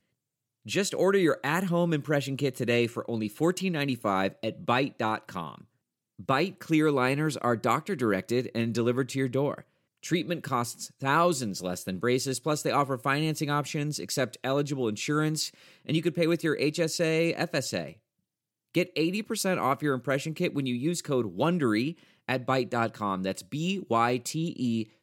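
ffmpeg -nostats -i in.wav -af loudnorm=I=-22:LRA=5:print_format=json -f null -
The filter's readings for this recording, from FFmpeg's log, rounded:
"input_i" : "-28.4",
"input_tp" : "-10.7",
"input_lra" : "2.1",
"input_thresh" : "-38.7",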